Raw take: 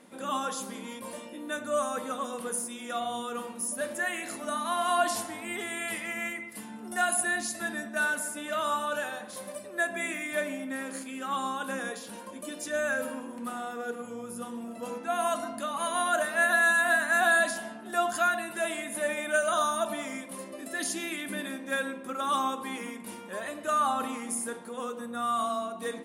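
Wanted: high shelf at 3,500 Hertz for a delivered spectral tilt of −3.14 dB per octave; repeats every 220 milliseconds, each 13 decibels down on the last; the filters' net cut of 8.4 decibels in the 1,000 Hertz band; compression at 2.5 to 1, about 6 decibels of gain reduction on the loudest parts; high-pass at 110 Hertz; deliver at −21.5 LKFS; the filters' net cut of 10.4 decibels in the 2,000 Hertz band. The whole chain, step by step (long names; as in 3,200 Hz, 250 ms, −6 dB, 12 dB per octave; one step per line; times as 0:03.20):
high-pass filter 110 Hz
parametric band 1,000 Hz −9 dB
parametric band 2,000 Hz −8 dB
high-shelf EQ 3,500 Hz −7.5 dB
downward compressor 2.5 to 1, threshold −37 dBFS
repeating echo 220 ms, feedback 22%, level −13 dB
level +18.5 dB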